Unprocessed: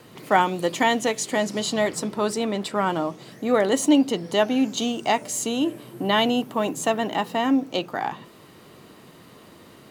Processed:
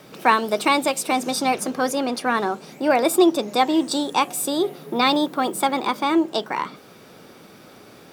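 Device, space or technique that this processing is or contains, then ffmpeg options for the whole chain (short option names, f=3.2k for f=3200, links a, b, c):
nightcore: -af "asetrate=53802,aresample=44100,volume=2dB"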